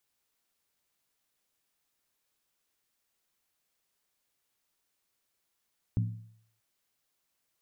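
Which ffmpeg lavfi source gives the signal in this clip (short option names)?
-f lavfi -i "aevalsrc='0.0708*pow(10,-3*t/0.64)*sin(2*PI*111*t)+0.0316*pow(10,-3*t/0.507)*sin(2*PI*176.9*t)+0.0141*pow(10,-3*t/0.438)*sin(2*PI*237.1*t)+0.00631*pow(10,-3*t/0.422)*sin(2*PI*254.9*t)+0.00282*pow(10,-3*t/0.393)*sin(2*PI*294.5*t)':d=0.63:s=44100"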